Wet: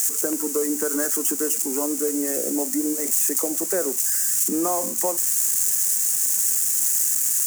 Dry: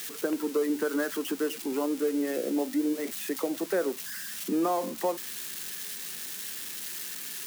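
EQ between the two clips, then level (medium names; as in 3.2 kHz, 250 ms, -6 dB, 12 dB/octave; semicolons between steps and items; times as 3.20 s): resonant high shelf 5.2 kHz +12.5 dB, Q 3; +2.5 dB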